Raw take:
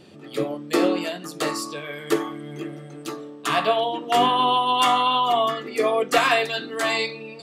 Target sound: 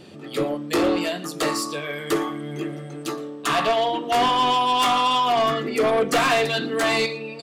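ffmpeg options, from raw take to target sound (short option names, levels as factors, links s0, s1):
-filter_complex "[0:a]asettb=1/sr,asplit=3[s0][s1][s2];[s0]atrim=end=5.374[s3];[s1]atrim=start=5.37:end=7.06,asetpts=PTS-STARTPTS,afade=t=in:d=0.004:c=qsin,afade=t=out:st=1.686:d=0.004:c=qsin,lowshelf=f=310:g=8.5[s4];[s2]atrim=start=7.056[s5];[s3][s4]acrossfade=d=0.004:c1=hsin:c2=qsin[s6];[s6][s5]acrossfade=d=0.004:c1=qsin:c2=hsin,asoftclip=type=tanh:threshold=0.106,aecho=1:1:116:0.0891,volume=1.58"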